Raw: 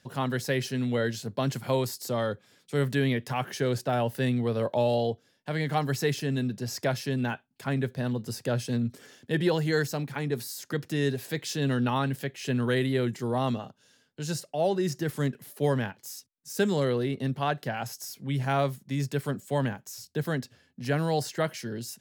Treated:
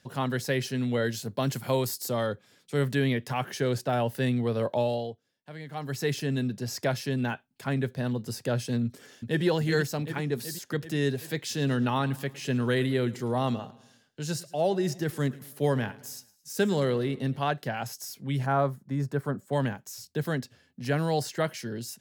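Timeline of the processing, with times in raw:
1.02–2.27 high shelf 9700 Hz +8 dB
4.73–6.16 dip -12 dB, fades 0.44 s
8.84–9.44 echo throw 0.38 s, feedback 65%, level -6.5 dB
11.44–17.36 feedback echo 0.109 s, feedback 48%, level -20 dB
18.46–19.53 resonant high shelf 1900 Hz -10 dB, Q 1.5

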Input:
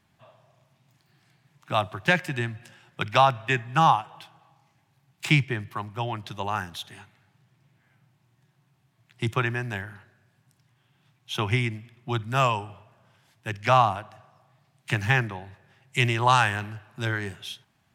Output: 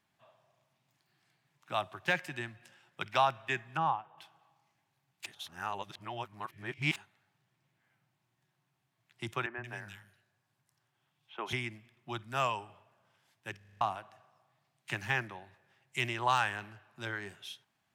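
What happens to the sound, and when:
3.77–4.18 tape spacing loss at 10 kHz 35 dB
5.26–6.96 reverse
9.46–11.53 three bands offset in time mids, lows, highs 0.12/0.18 s, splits 230/2400 Hz
13.57 stutter in place 0.04 s, 6 plays
16.09–17.29 high shelf 7100 Hz -4.5 dB
whole clip: low shelf 180 Hz -12 dB; de-esser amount 50%; gain -8 dB

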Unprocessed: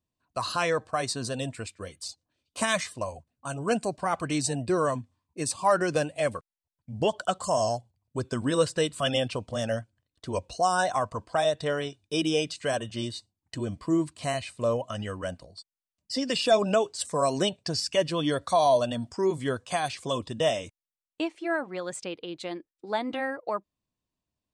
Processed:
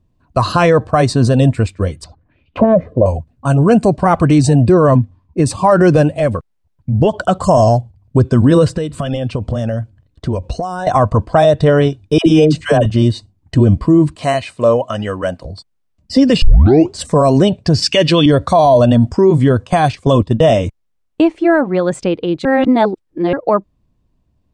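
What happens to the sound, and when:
2.04–3.06 envelope low-pass 530–2900 Hz down, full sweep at -31.5 dBFS
4.74–5.46 LPF 4000 Hz 6 dB/oct
6.11–7.14 compressor 1.5:1, threshold -40 dBFS
8.73–10.87 compressor 4:1, threshold -38 dBFS
12.18–12.86 dispersion lows, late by 82 ms, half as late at 640 Hz
14.15–15.45 HPF 600 Hz 6 dB/oct
16.42 tape start 0.51 s
17.82–18.26 weighting filter D
19.67–20.54 gate -37 dBFS, range -10 dB
22.45–23.33 reverse
whole clip: tilt -3.5 dB/oct; maximiser +16.5 dB; gain -1 dB

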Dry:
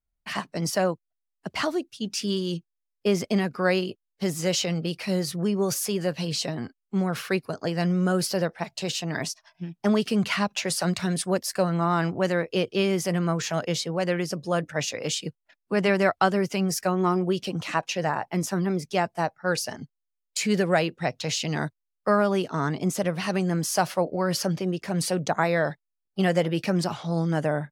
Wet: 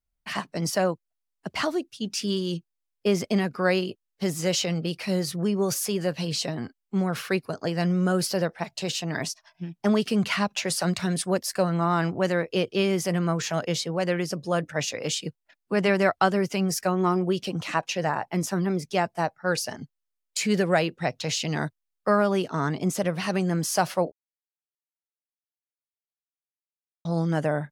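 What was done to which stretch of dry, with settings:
24.12–27.05 mute

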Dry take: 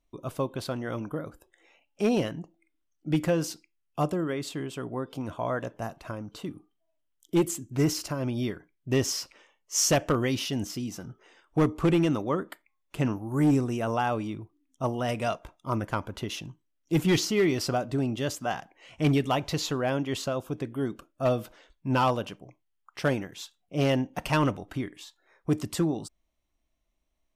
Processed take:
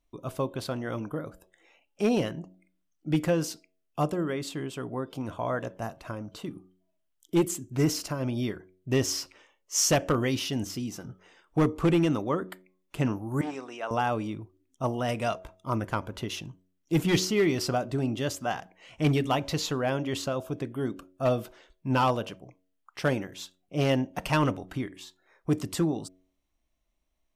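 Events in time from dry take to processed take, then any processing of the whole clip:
13.41–13.91 BPF 660–4600 Hz
whole clip: de-hum 92.65 Hz, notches 7

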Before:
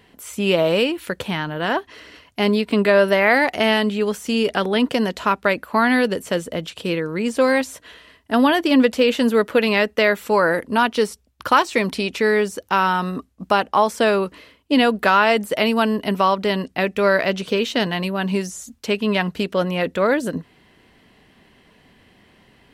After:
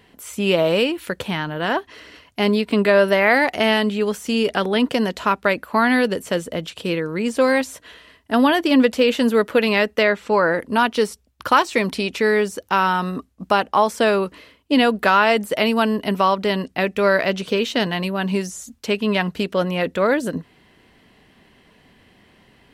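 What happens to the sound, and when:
10.03–10.6 air absorption 83 m

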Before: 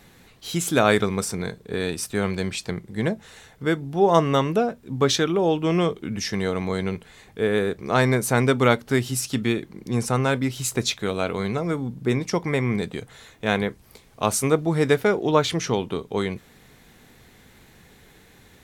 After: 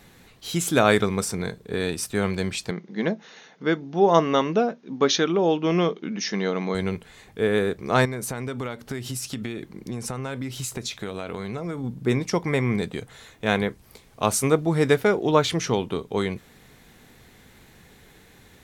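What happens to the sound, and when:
2.71–6.75 brick-wall FIR band-pass 150–6800 Hz
8.05–11.84 compressor 16:1, threshold -26 dBFS

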